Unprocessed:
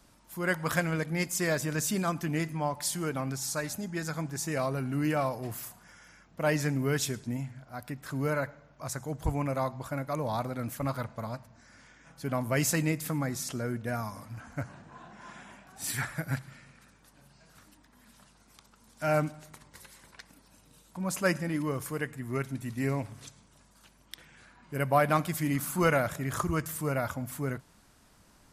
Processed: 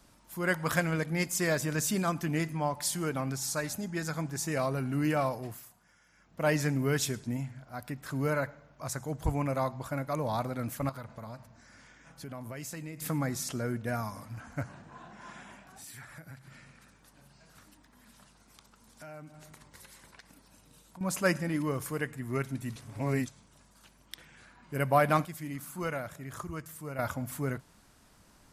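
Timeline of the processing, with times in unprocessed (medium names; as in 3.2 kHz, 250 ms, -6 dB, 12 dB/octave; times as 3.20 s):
5.33–6.42 s: dip -10.5 dB, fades 0.31 s
10.89–13.02 s: compression 5:1, threshold -39 dBFS
15.66–21.01 s: compression 4:1, threshold -47 dBFS
22.76–23.26 s: reverse
25.25–26.99 s: gain -9.5 dB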